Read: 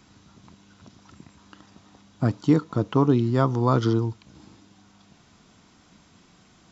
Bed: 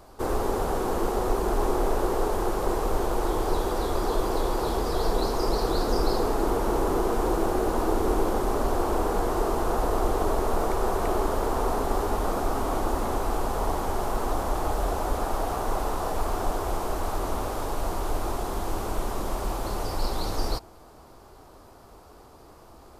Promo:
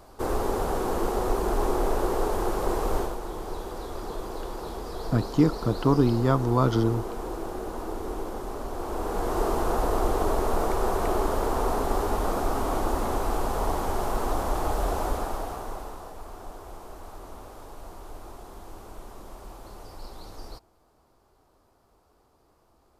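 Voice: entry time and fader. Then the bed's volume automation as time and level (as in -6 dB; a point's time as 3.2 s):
2.90 s, -1.5 dB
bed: 2.99 s -0.5 dB
3.19 s -9 dB
8.71 s -9 dB
9.42 s 0 dB
15.05 s 0 dB
16.16 s -14 dB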